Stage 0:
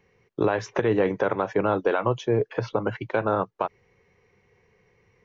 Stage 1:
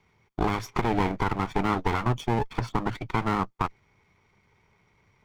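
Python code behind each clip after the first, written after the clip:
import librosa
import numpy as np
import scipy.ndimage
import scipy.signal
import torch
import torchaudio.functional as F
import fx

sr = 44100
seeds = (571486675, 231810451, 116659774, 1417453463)

y = fx.lower_of_two(x, sr, delay_ms=0.88)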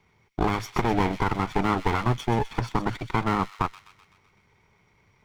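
y = fx.echo_wet_highpass(x, sr, ms=127, feedback_pct=56, hz=2900.0, wet_db=-7)
y = F.gain(torch.from_numpy(y), 1.5).numpy()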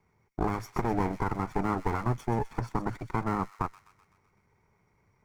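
y = fx.peak_eq(x, sr, hz=3300.0, db=-14.0, octaves=1.0)
y = F.gain(torch.from_numpy(y), -4.5).numpy()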